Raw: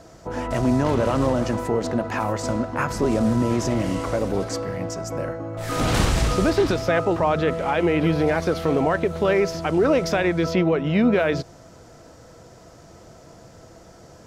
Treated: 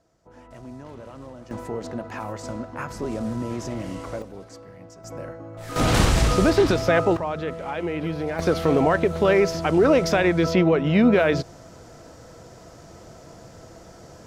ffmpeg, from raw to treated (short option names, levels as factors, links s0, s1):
-af "asetnsamples=n=441:p=0,asendcmd='1.51 volume volume -8dB;4.22 volume volume -16dB;5.04 volume volume -7.5dB;5.76 volume volume 1.5dB;7.17 volume volume -7.5dB;8.39 volume volume 1.5dB',volume=0.1"